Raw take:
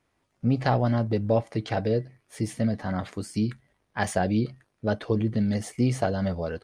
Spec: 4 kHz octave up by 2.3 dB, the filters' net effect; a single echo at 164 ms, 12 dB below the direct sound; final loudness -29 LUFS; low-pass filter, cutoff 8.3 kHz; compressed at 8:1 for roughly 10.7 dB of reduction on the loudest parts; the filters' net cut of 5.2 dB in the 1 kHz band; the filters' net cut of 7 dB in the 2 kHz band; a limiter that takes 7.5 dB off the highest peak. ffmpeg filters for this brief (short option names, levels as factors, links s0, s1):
-af "lowpass=8300,equalizer=f=1000:t=o:g=-7,equalizer=f=2000:t=o:g=-7.5,equalizer=f=4000:t=o:g=5.5,acompressor=threshold=0.0282:ratio=8,alimiter=level_in=1.41:limit=0.0631:level=0:latency=1,volume=0.708,aecho=1:1:164:0.251,volume=2.99"